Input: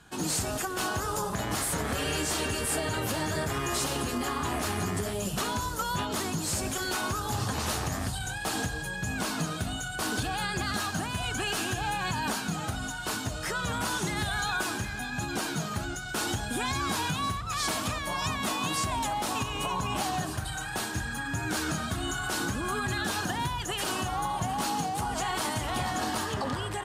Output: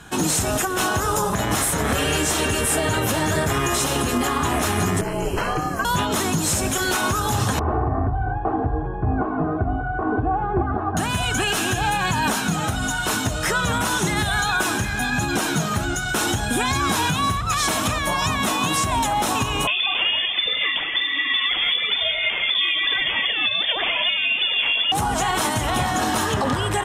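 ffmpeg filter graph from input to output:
-filter_complex "[0:a]asettb=1/sr,asplit=3[a][b][c];[a]atrim=end=5.014[d];[b]atrim=start=5.01:end=5.85,asetpts=PTS-STARTPTS,afade=t=in:d=0.004:c=qsin,afade=t=out:st=0.836:d=0.004:c=qsin,acrossover=split=3400[e][f];[f]acompressor=threshold=-50dB:ratio=4:attack=1:release=60[g];[e][g]amix=inputs=2:normalize=0,aeval=exprs='val(0)*sin(2*PI*230*n/s)':c=same,asuperstop=centerf=3600:order=20:qfactor=4.8[h];[c]atrim=start=5.846[i];[d][h]acrossfade=d=0.004:c1=hsin:c2=qsin[j];[j][i]acrossfade=d=0.004:c1=qsin:c2=hsin,asettb=1/sr,asplit=3[k][l][m];[k]atrim=end=7.594[n];[l]atrim=start=7.59:end=10.97,asetpts=PTS-STARTPTS,afade=t=in:d=0.004:c=qsin,afade=t=out:st=3.376:d=0.004:c=qsin,lowpass=f=1.1k:w=0.5412,lowpass=f=1.1k:w=1.3066,aecho=1:1:2.7:0.68,atrim=end_sample=149058[o];[m]atrim=start=10.966[p];[n][o]acrossfade=d=0.004:c1=hsin:c2=qsin[q];[q][p]acrossfade=d=0.004:c1=qsin:c2=hsin,asettb=1/sr,asplit=3[r][s][t];[r]atrim=end=19.674[u];[s]atrim=start=19.67:end=24.92,asetpts=PTS-STARTPTS,afade=t=in:d=0.004:c=qsin,afade=t=out:st=5.246:d=0.004:c=qsin,aphaser=in_gain=1:out_gain=1:delay=3:decay=0.45:speed=1:type=sinusoidal,lowpass=f=3.1k:t=q:w=0.5098,lowpass=f=3.1k:t=q:w=0.6013,lowpass=f=3.1k:t=q:w=0.9,lowpass=f=3.1k:t=q:w=2.563,afreqshift=-3600[v];[t]atrim=start=24.916[w];[u][v]acrossfade=d=0.004:c1=hsin:c2=qsin[x];[x][w]acrossfade=d=0.004:c1=qsin:c2=hsin,bandreject=f=4.6k:w=6.8,acontrast=50,alimiter=limit=-18.5dB:level=0:latency=1:release=277,volume=6.5dB"

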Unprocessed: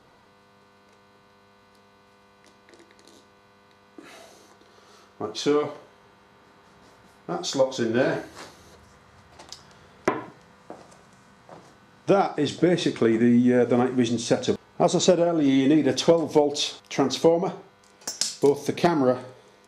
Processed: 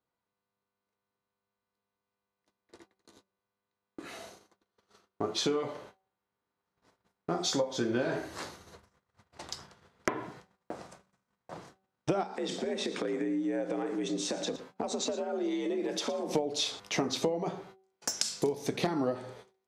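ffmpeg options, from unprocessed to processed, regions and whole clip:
-filter_complex "[0:a]asettb=1/sr,asplit=3[a][b][c];[a]atrim=end=12.234[d];[b]atrim=start=12.23:end=16.35,asetpts=PTS-STARTPTS,afade=t=in:d=0.004:c=qsin,afade=t=out:st=4.116:d=0.004:c=qsin,acompressor=threshold=-32dB:ratio=4:attack=3.2:release=140:knee=1:detection=peak,afreqshift=60,aecho=1:1:114:0.178,atrim=end_sample=181692[e];[c]atrim=start=16.346[f];[d][e]acrossfade=d=0.004:c1=hsin:c2=qsin[g];[g][f]acrossfade=d=0.004:c1=qsin:c2=hsin,agate=range=-33dB:threshold=-49dB:ratio=16:detection=peak,acompressor=threshold=-28dB:ratio=6,bandreject=f=190.6:t=h:w=4,bandreject=f=381.2:t=h:w=4,bandreject=f=571.8:t=h:w=4,bandreject=f=762.4:t=h:w=4,volume=1dB"

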